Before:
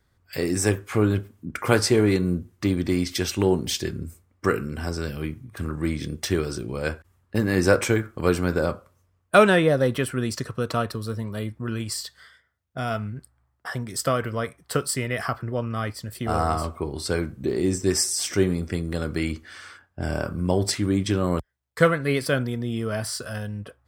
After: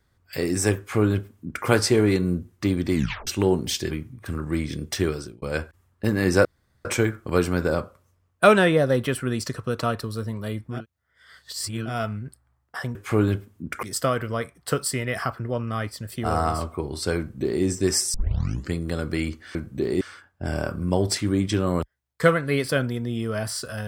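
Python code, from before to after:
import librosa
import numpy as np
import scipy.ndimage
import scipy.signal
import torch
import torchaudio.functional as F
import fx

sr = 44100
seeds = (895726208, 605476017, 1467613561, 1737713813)

y = fx.edit(x, sr, fx.duplicate(start_s=0.78, length_s=0.88, to_s=13.86),
    fx.tape_stop(start_s=2.94, length_s=0.33),
    fx.cut(start_s=3.91, length_s=1.31),
    fx.fade_out_span(start_s=6.4, length_s=0.33),
    fx.insert_room_tone(at_s=7.76, length_s=0.4),
    fx.reverse_span(start_s=11.69, length_s=1.1, crossfade_s=0.16),
    fx.duplicate(start_s=17.21, length_s=0.46, to_s=19.58),
    fx.tape_start(start_s=18.17, length_s=0.59), tone=tone)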